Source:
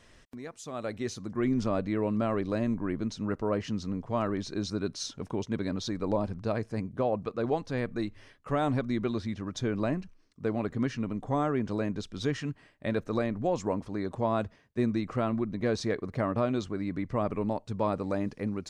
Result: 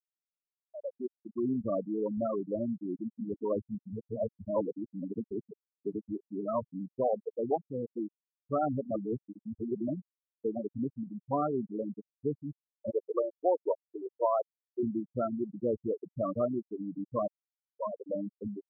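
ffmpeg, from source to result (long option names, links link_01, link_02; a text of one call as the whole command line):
ffmpeg -i in.wav -filter_complex "[0:a]asplit=2[link_01][link_02];[link_02]afade=type=in:start_time=2.63:duration=0.01,afade=type=out:start_time=3.13:duration=0.01,aecho=0:1:510|1020|1530:0.334965|0.0837414|0.0209353[link_03];[link_01][link_03]amix=inputs=2:normalize=0,asettb=1/sr,asplit=3[link_04][link_05][link_06];[link_04]atrim=end=12.904[link_07];[link_05]atrim=start=12.9:end=14.83,asetpts=PTS-STARTPTS,afade=type=in:duration=0.004:curve=qsin,afade=type=out:start_time=1.926:duration=0.004:curve=qsin,lowshelf=frequency=290:width_type=q:width=1.5:gain=-10[link_08];[link_06]atrim=start=14.826[link_09];[link_07][link_08]acrossfade=duration=0.004:curve1=hsin:curve2=qsin[link_10];[link_10][link_09]acrossfade=duration=0.004:curve1=qsin:curve2=hsin,asplit=6[link_11][link_12][link_13][link_14][link_15][link_16];[link_11]atrim=end=3.782[link_17];[link_12]atrim=start=3.778:end=6.952,asetpts=PTS-STARTPTS,areverse[link_18];[link_13]atrim=start=6.948:end=8.912[link_19];[link_14]atrim=start=8.908:end=9.882,asetpts=PTS-STARTPTS,areverse[link_20];[link_15]atrim=start=9.878:end=17.28,asetpts=PTS-STARTPTS,afade=type=out:start_time=7.398:duration=0.004:curve=hsin[link_21];[link_16]atrim=start=17.28,asetpts=PTS-STARTPTS,afade=type=in:duration=0.9[link_22];[link_17][link_18]acrossfade=duration=0.004:curve1=hsin:curve2=hsin[link_23];[link_23][link_19]acrossfade=duration=0.004:curve1=hsin:curve2=hsin[link_24];[link_24][link_20]acrossfade=duration=0.004:curve1=hsin:curve2=hsin[link_25];[link_21][link_22]concat=n=2:v=0:a=1[link_26];[link_25][link_26]acrossfade=duration=0.004:curve1=hsin:curve2=hsin,highpass=66,afftfilt=real='re*gte(hypot(re,im),0.141)':imag='im*gte(hypot(re,im),0.141)':win_size=1024:overlap=0.75,lowshelf=frequency=300:gain=-11,volume=3dB" out.wav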